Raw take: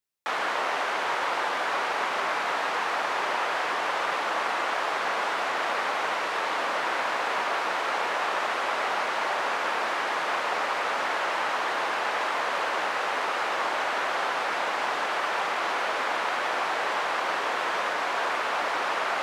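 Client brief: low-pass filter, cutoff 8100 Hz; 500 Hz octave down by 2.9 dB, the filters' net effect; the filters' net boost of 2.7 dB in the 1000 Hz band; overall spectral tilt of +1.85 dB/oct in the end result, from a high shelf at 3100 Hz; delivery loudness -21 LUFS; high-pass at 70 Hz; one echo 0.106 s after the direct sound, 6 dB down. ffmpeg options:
-af "highpass=70,lowpass=8.1k,equalizer=f=500:t=o:g=-6,equalizer=f=1k:t=o:g=5.5,highshelf=f=3.1k:g=-5,aecho=1:1:106:0.501,volume=4dB"

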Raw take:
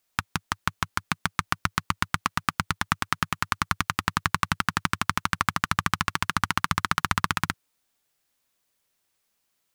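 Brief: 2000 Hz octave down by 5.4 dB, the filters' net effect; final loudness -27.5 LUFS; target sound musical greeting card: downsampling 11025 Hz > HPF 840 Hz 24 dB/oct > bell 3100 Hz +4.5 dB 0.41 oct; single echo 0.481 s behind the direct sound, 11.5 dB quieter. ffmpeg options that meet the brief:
-af "equalizer=f=2k:t=o:g=-8,aecho=1:1:481:0.266,aresample=11025,aresample=44100,highpass=f=840:w=0.5412,highpass=f=840:w=1.3066,equalizer=f=3.1k:t=o:w=0.41:g=4.5,volume=3.5dB"

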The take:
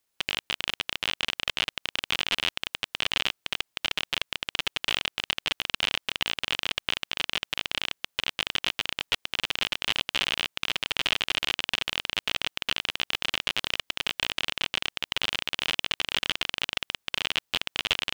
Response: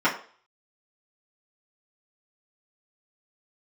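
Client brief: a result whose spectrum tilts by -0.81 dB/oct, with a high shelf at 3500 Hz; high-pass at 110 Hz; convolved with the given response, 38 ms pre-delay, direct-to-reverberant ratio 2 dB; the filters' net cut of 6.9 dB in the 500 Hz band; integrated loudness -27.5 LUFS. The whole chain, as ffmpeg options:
-filter_complex "[0:a]highpass=110,equalizer=f=500:t=o:g=-9,highshelf=f=3.5k:g=-5,asplit=2[a][b];[1:a]atrim=start_sample=2205,adelay=38[c];[b][c]afir=irnorm=-1:irlink=0,volume=-19dB[d];[a][d]amix=inputs=2:normalize=0,volume=2dB"

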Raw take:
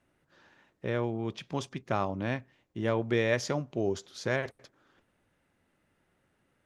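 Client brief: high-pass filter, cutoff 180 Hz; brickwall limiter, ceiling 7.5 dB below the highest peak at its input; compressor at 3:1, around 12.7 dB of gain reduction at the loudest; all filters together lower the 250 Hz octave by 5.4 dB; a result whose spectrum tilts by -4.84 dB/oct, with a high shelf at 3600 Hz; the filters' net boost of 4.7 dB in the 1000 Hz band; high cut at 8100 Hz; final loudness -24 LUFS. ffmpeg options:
-af "highpass=180,lowpass=8.1k,equalizer=f=250:t=o:g=-7,equalizer=f=1k:t=o:g=7,highshelf=f=3.6k:g=-6.5,acompressor=threshold=-39dB:ratio=3,volume=21dB,alimiter=limit=-10.5dB:level=0:latency=1"

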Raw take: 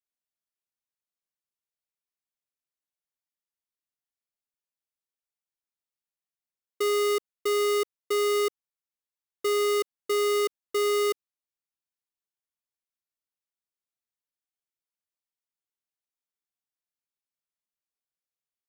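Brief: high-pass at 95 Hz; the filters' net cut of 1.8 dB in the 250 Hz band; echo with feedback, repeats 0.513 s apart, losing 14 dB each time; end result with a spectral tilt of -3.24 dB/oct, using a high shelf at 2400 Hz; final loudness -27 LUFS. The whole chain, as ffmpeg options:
-af "highpass=95,equalizer=f=250:t=o:g=-5.5,highshelf=f=2.4k:g=3.5,aecho=1:1:513|1026:0.2|0.0399"

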